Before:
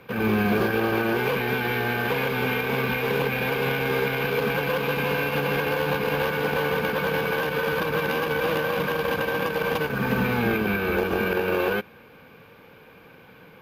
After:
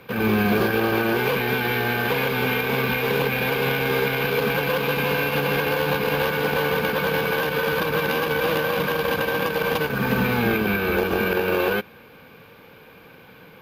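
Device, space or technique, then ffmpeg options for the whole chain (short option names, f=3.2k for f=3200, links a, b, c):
presence and air boost: -af "equalizer=f=4k:t=o:w=0.77:g=3,highshelf=f=11k:g=6,volume=2dB"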